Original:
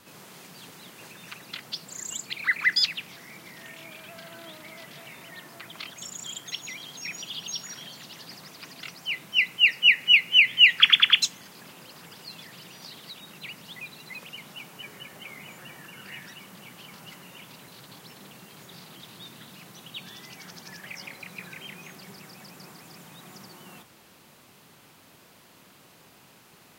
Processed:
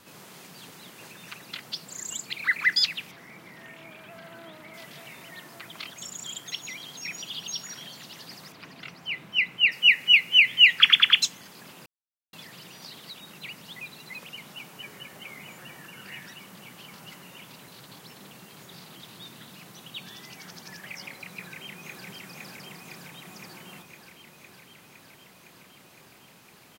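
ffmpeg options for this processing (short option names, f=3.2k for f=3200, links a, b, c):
-filter_complex "[0:a]asettb=1/sr,asplit=3[a][b][c];[a]atrim=end=3.114[d];[b]atrim=start=3.11:end=4.74,asetpts=PTS-STARTPTS,afade=t=in:d=0.004:c=qsin,afade=t=out:st=1.626:d=0.004:c=qsin,acrossover=split=2600[e][f];[f]acompressor=threshold=-57dB:ratio=4:attack=1:release=60[g];[e][g]amix=inputs=2:normalize=0[h];[c]atrim=start=4.736[i];[d][h]acrossfade=d=0.004:c1=hsin:c2=qsin[j];[j][i]acrossfade=d=0.004:c1=qsin:c2=hsin,asettb=1/sr,asplit=3[k][l][m];[k]atrim=end=8.524[n];[l]atrim=start=8.52:end=9.72,asetpts=PTS-STARTPTS,afade=t=in:d=0.004:c=qsin,afade=t=out:st=1.196:d=0.004:c=qsin,bass=f=250:g=3,treble=f=4k:g=-11[o];[m]atrim=start=9.716[p];[n][o]acrossfade=d=0.004:c1=hsin:c2=qsin[q];[q][p]acrossfade=d=0.004:c1=qsin:c2=hsin,asplit=2[r][s];[s]afade=t=in:st=21.33:d=0.01,afade=t=out:st=22.06:d=0.01,aecho=0:1:510|1020|1530|2040|2550|3060|3570|4080|4590|5100|5610|6120:0.668344|0.534675|0.42774|0.342192|0.273754|0.219003|0.175202|0.140162|0.11213|0.0897036|0.0717629|0.0574103[t];[r][t]amix=inputs=2:normalize=0,asplit=3[u][v][w];[u]atrim=end=11.86,asetpts=PTS-STARTPTS,afade=t=out:st=11.856:d=0.004:c=hsin[x];[v]atrim=start=11.86:end=12.33,asetpts=PTS-STARTPTS,volume=0[y];[w]atrim=start=12.33,asetpts=PTS-STARTPTS,afade=t=in:d=0.004:c=hsin[z];[x][y][z]concat=n=3:v=0:a=1"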